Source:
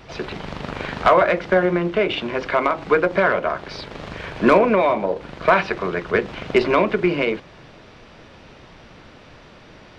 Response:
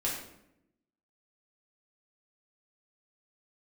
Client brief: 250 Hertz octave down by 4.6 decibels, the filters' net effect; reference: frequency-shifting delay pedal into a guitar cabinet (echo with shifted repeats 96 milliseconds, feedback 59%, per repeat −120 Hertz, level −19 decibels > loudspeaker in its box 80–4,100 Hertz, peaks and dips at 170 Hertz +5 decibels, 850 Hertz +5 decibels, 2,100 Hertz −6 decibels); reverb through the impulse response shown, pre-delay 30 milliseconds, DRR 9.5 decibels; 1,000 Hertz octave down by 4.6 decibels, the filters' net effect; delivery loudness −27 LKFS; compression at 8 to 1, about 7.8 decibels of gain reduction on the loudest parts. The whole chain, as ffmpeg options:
-filter_complex "[0:a]equalizer=frequency=250:width_type=o:gain=-8.5,equalizer=frequency=1000:width_type=o:gain=-7.5,acompressor=threshold=-22dB:ratio=8,asplit=2[link_01][link_02];[1:a]atrim=start_sample=2205,adelay=30[link_03];[link_02][link_03]afir=irnorm=-1:irlink=0,volume=-15dB[link_04];[link_01][link_04]amix=inputs=2:normalize=0,asplit=6[link_05][link_06][link_07][link_08][link_09][link_10];[link_06]adelay=96,afreqshift=-120,volume=-19dB[link_11];[link_07]adelay=192,afreqshift=-240,volume=-23.6dB[link_12];[link_08]adelay=288,afreqshift=-360,volume=-28.2dB[link_13];[link_09]adelay=384,afreqshift=-480,volume=-32.7dB[link_14];[link_10]adelay=480,afreqshift=-600,volume=-37.3dB[link_15];[link_05][link_11][link_12][link_13][link_14][link_15]amix=inputs=6:normalize=0,highpass=80,equalizer=frequency=170:width_type=q:width=4:gain=5,equalizer=frequency=850:width_type=q:width=4:gain=5,equalizer=frequency=2100:width_type=q:width=4:gain=-6,lowpass=frequency=4100:width=0.5412,lowpass=frequency=4100:width=1.3066,volume=1dB"

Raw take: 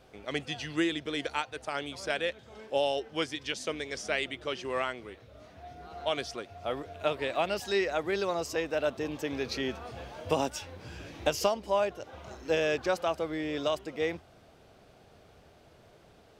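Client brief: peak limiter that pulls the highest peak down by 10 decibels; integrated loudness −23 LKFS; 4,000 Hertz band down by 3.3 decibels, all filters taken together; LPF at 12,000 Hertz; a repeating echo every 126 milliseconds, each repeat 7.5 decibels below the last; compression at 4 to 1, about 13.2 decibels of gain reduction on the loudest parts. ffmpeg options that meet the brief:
ffmpeg -i in.wav -af "lowpass=12000,equalizer=frequency=4000:width_type=o:gain=-4.5,acompressor=threshold=-39dB:ratio=4,alimiter=level_in=9.5dB:limit=-24dB:level=0:latency=1,volume=-9.5dB,aecho=1:1:126|252|378|504|630:0.422|0.177|0.0744|0.0312|0.0131,volume=21dB" out.wav

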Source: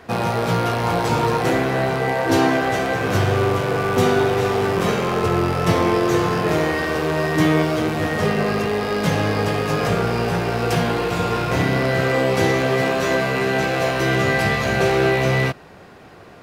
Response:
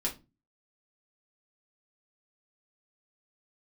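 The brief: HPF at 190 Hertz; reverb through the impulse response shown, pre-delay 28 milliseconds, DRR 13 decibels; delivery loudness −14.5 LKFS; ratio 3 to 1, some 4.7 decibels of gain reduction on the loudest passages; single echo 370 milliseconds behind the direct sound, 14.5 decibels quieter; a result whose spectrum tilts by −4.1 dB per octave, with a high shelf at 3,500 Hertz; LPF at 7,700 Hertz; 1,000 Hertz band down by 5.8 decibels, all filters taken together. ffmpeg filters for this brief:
-filter_complex "[0:a]highpass=190,lowpass=7700,equalizer=frequency=1000:width_type=o:gain=-9,highshelf=frequency=3500:gain=8.5,acompressor=threshold=-21dB:ratio=3,aecho=1:1:370:0.188,asplit=2[link_01][link_02];[1:a]atrim=start_sample=2205,adelay=28[link_03];[link_02][link_03]afir=irnorm=-1:irlink=0,volume=-17dB[link_04];[link_01][link_04]amix=inputs=2:normalize=0,volume=9dB"

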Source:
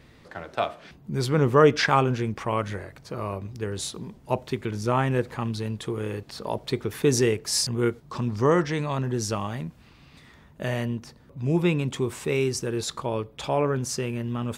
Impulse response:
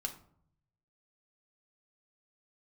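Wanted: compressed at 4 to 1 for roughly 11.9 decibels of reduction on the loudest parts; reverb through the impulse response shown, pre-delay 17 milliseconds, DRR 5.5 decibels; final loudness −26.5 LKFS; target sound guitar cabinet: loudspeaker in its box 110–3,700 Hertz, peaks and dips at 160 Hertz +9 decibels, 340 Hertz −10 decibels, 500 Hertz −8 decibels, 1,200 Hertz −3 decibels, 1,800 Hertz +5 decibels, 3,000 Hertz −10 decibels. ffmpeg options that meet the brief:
-filter_complex "[0:a]acompressor=threshold=-26dB:ratio=4,asplit=2[link_01][link_02];[1:a]atrim=start_sample=2205,adelay=17[link_03];[link_02][link_03]afir=irnorm=-1:irlink=0,volume=-5.5dB[link_04];[link_01][link_04]amix=inputs=2:normalize=0,highpass=110,equalizer=frequency=160:width_type=q:width=4:gain=9,equalizer=frequency=340:width_type=q:width=4:gain=-10,equalizer=frequency=500:width_type=q:width=4:gain=-8,equalizer=frequency=1200:width_type=q:width=4:gain=-3,equalizer=frequency=1800:width_type=q:width=4:gain=5,equalizer=frequency=3000:width_type=q:width=4:gain=-10,lowpass=frequency=3700:width=0.5412,lowpass=frequency=3700:width=1.3066,volume=5dB"

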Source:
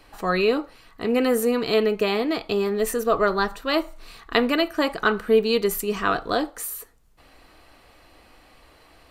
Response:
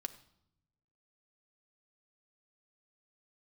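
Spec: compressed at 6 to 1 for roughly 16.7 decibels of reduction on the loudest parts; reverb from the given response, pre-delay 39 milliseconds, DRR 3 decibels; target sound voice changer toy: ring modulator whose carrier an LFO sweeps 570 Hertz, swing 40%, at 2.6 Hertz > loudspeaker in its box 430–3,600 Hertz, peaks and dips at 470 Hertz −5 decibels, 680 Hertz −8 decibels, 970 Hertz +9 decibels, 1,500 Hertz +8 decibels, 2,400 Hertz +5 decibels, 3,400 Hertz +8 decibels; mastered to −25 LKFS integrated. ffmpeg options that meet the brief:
-filter_complex "[0:a]acompressor=threshold=-33dB:ratio=6,asplit=2[link_01][link_02];[1:a]atrim=start_sample=2205,adelay=39[link_03];[link_02][link_03]afir=irnorm=-1:irlink=0,volume=-1dB[link_04];[link_01][link_04]amix=inputs=2:normalize=0,aeval=exprs='val(0)*sin(2*PI*570*n/s+570*0.4/2.6*sin(2*PI*2.6*n/s))':channel_layout=same,highpass=430,equalizer=frequency=470:width_type=q:width=4:gain=-5,equalizer=frequency=680:width_type=q:width=4:gain=-8,equalizer=frequency=970:width_type=q:width=4:gain=9,equalizer=frequency=1500:width_type=q:width=4:gain=8,equalizer=frequency=2400:width_type=q:width=4:gain=5,equalizer=frequency=3400:width_type=q:width=4:gain=8,lowpass=frequency=3600:width=0.5412,lowpass=frequency=3600:width=1.3066,volume=9dB"

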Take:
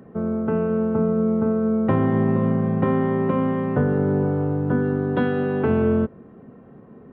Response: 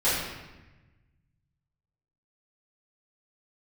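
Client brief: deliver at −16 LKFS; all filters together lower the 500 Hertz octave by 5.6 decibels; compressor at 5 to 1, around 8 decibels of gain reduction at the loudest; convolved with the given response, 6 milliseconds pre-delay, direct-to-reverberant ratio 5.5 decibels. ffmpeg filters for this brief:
-filter_complex "[0:a]equalizer=frequency=500:width_type=o:gain=-7,acompressor=threshold=-26dB:ratio=5,asplit=2[link_01][link_02];[1:a]atrim=start_sample=2205,adelay=6[link_03];[link_02][link_03]afir=irnorm=-1:irlink=0,volume=-19.5dB[link_04];[link_01][link_04]amix=inputs=2:normalize=0,volume=11.5dB"

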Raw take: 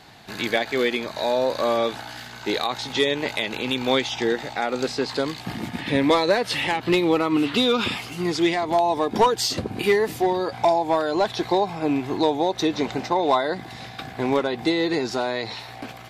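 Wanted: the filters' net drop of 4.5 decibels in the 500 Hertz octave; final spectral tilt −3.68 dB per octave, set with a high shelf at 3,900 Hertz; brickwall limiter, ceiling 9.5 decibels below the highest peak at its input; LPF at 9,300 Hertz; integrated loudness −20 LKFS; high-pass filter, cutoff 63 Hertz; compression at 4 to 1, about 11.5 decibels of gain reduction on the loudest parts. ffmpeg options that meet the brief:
ffmpeg -i in.wav -af "highpass=63,lowpass=9300,equalizer=frequency=500:width_type=o:gain=-6,highshelf=frequency=3900:gain=5.5,acompressor=threshold=-30dB:ratio=4,volume=14dB,alimiter=limit=-10dB:level=0:latency=1" out.wav

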